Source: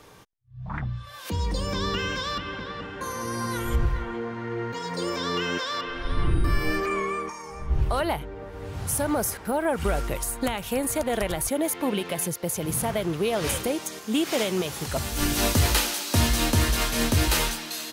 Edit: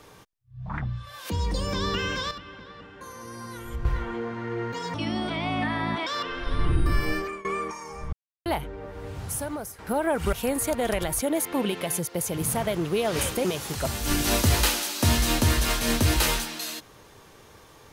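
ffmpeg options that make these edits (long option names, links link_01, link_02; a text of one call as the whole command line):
ffmpeg -i in.wav -filter_complex "[0:a]asplit=11[link_01][link_02][link_03][link_04][link_05][link_06][link_07][link_08][link_09][link_10][link_11];[link_01]atrim=end=2.312[link_12];[link_02]atrim=start=2.308:end=3.852,asetpts=PTS-STARTPTS,volume=-9.5dB[link_13];[link_03]atrim=start=3.848:end=4.944[link_14];[link_04]atrim=start=4.94:end=5.65,asetpts=PTS-STARTPTS,asetrate=27783,aresample=44100[link_15];[link_05]atrim=start=5.646:end=7.03,asetpts=PTS-STARTPTS,afade=type=out:start_time=0.854:duration=0.53:curve=qsin:silence=0.0749894[link_16];[link_06]atrim=start=7.03:end=7.71,asetpts=PTS-STARTPTS,afade=type=in:duration=0.004:curve=hsin:silence=0.0749894,afade=type=out:start_time=0.676:duration=0.004:curve=hsin[link_17];[link_07]atrim=start=7.71:end=8.04,asetpts=PTS-STARTPTS,volume=0[link_18];[link_08]atrim=start=8.04:end=9.37,asetpts=PTS-STARTPTS,afade=type=in:duration=0.004:curve=hsin,afade=type=out:start_time=0.52:duration=0.81:silence=0.149624[link_19];[link_09]atrim=start=9.37:end=9.912,asetpts=PTS-STARTPTS,afade=type=in:duration=0.004:curve=hsin:silence=0.149624[link_20];[link_10]atrim=start=10.608:end=13.732[link_21];[link_11]atrim=start=14.558[link_22];[link_12][link_13]acrossfade=duration=0.004:curve1=hsin:curve2=hsin[link_23];[link_23][link_14]acrossfade=duration=0.004:curve1=hsin:curve2=hsin[link_24];[link_24][link_15]acrossfade=duration=0.004:curve1=hsin:curve2=hsin[link_25];[link_16][link_17][link_18][link_19][link_20]concat=n=5:v=0:a=1[link_26];[link_25][link_26]acrossfade=duration=0.004:curve1=hsin:curve2=hsin[link_27];[link_27][link_21]acrossfade=duration=0.004:curve1=hsin:curve2=hsin[link_28];[link_28][link_22]acrossfade=duration=0.004:curve1=hsin:curve2=hsin" out.wav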